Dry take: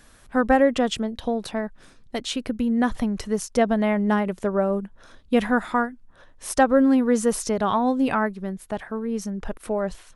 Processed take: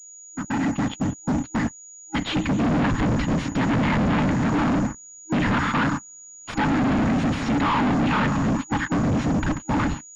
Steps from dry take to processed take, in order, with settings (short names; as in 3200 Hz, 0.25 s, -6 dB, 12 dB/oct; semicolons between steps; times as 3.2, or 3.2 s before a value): opening faded in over 2.92 s; bell 400 Hz +9 dB 1.1 oct; spring tank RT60 3 s, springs 34 ms, chirp 70 ms, DRR 14 dB; whisperiser; limiter -9.5 dBFS, peak gain reduction 9.5 dB; gate -31 dBFS, range -34 dB; FFT band-reject 320–810 Hz; sample leveller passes 2; hard clip -26 dBFS, distortion -6 dB; AGC gain up to 7.5 dB; pulse-width modulation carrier 6800 Hz; gain -1 dB